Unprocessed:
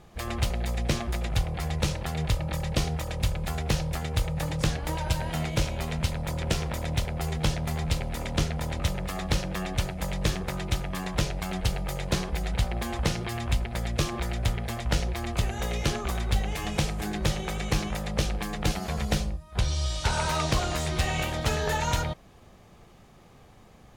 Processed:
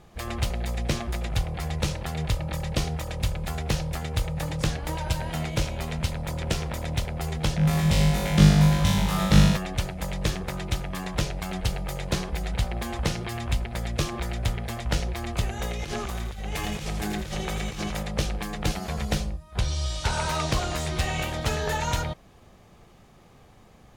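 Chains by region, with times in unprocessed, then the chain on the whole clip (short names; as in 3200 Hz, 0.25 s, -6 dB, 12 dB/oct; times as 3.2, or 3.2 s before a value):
7.57–9.57 bell 180 Hz +14.5 dB 0.39 oct + flutter echo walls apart 3.4 m, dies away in 1.1 s
15.71–18.03 negative-ratio compressor -31 dBFS + thin delay 83 ms, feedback 51%, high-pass 1700 Hz, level -7 dB
whole clip: dry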